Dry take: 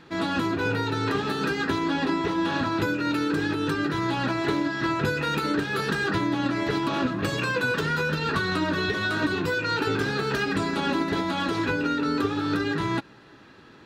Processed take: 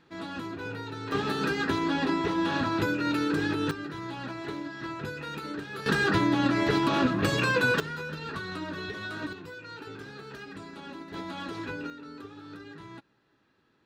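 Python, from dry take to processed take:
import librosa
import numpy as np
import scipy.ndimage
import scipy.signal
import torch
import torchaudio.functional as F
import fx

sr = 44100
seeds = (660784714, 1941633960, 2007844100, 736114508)

y = fx.gain(x, sr, db=fx.steps((0.0, -11.0), (1.12, -2.0), (3.71, -11.0), (5.86, 1.0), (7.8, -10.5), (9.33, -17.0), (11.14, -10.5), (11.9, -19.0)))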